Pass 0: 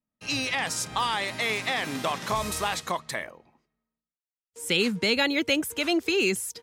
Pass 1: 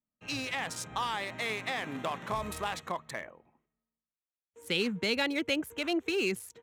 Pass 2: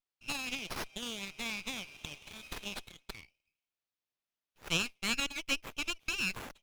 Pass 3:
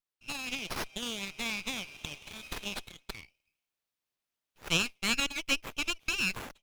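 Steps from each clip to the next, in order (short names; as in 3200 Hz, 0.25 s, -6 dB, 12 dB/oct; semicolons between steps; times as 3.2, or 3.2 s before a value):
Wiener smoothing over 9 samples; gain -5.5 dB
steep high-pass 2300 Hz 96 dB/oct; running maximum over 5 samples; gain +2.5 dB
AGC gain up to 5.5 dB; gain -2 dB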